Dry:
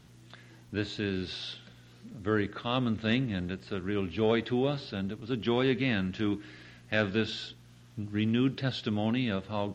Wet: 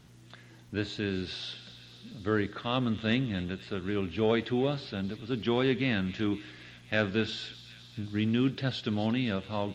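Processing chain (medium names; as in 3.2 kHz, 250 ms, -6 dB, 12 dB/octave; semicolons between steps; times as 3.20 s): feedback echo behind a high-pass 259 ms, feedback 70%, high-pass 2.7 kHz, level -12 dB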